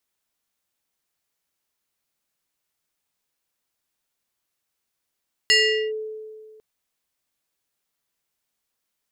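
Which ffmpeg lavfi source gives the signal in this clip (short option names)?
-f lavfi -i "aevalsrc='0.251*pow(10,-3*t/1.92)*sin(2*PI*434*t+2.2*clip(1-t/0.42,0,1)*sin(2*PI*5.5*434*t))':d=1.1:s=44100"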